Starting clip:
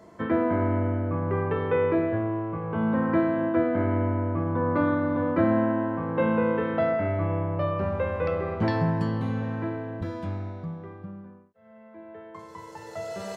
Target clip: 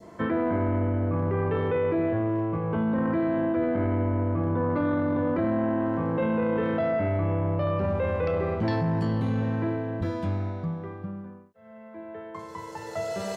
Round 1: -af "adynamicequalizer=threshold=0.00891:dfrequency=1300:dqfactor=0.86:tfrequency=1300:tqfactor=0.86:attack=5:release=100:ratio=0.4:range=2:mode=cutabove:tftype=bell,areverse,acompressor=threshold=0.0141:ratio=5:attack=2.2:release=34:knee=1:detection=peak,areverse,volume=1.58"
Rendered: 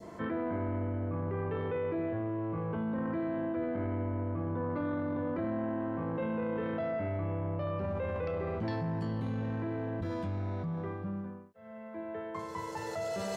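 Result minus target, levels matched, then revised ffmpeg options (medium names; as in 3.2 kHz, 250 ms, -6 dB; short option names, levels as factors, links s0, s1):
compression: peak gain reduction +8.5 dB
-af "adynamicequalizer=threshold=0.00891:dfrequency=1300:dqfactor=0.86:tfrequency=1300:tqfactor=0.86:attack=5:release=100:ratio=0.4:range=2:mode=cutabove:tftype=bell,areverse,acompressor=threshold=0.0473:ratio=5:attack=2.2:release=34:knee=1:detection=peak,areverse,volume=1.58"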